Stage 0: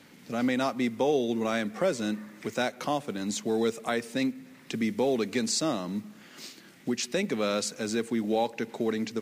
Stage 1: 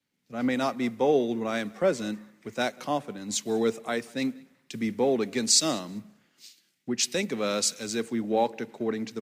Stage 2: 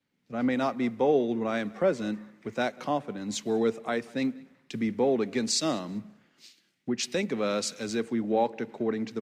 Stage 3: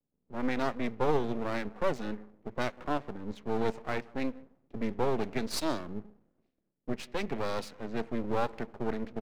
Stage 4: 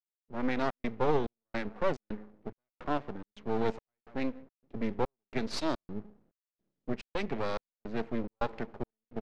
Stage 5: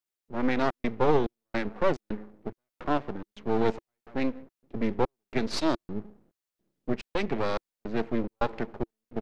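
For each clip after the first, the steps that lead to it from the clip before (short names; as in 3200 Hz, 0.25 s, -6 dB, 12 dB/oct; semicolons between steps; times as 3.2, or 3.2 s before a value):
feedback echo 0.195 s, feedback 38%, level -22.5 dB; three-band expander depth 100%
LPF 2600 Hz 6 dB/oct; in parallel at -1.5 dB: compressor, threshold -34 dBFS, peak gain reduction 15 dB; on the sum: gain -2 dB
low-pass opened by the level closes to 400 Hz, open at -20.5 dBFS; half-wave rectifier
LPF 5300 Hz 12 dB/oct; step gate "..xxx.xxx" 107 bpm -60 dB
bell 340 Hz +3.5 dB 0.27 oct; gain +4.5 dB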